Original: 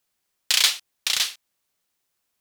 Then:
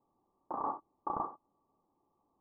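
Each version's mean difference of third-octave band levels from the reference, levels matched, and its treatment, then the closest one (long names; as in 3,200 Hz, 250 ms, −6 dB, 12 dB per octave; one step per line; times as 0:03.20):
27.5 dB: brickwall limiter −11.5 dBFS, peak gain reduction 8.5 dB
Chebyshev low-pass with heavy ripple 1,200 Hz, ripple 9 dB
level +15.5 dB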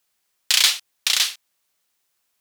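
1.5 dB: low-shelf EQ 500 Hz −6.5 dB
in parallel at −1 dB: brickwall limiter −10.5 dBFS, peak gain reduction 7.5 dB
on the sum: level −1 dB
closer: second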